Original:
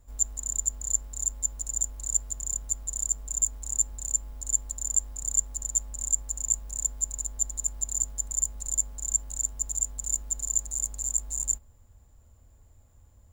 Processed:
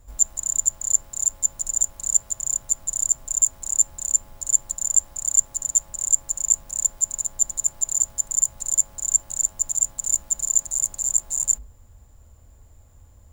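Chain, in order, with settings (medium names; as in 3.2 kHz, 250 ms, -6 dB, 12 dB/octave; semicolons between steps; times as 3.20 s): hum notches 50/100/150/200/250/300/350/400/450 Hz; trim +7 dB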